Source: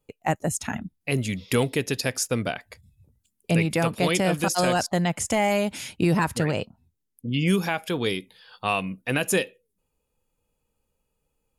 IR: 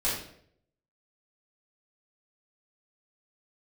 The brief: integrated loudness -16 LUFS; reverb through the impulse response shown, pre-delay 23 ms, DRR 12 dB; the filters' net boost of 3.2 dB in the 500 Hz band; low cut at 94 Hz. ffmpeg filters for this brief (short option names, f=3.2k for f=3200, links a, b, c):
-filter_complex "[0:a]highpass=94,equalizer=f=500:t=o:g=4,asplit=2[a][b];[1:a]atrim=start_sample=2205,adelay=23[c];[b][c]afir=irnorm=-1:irlink=0,volume=-21dB[d];[a][d]amix=inputs=2:normalize=0,volume=7.5dB"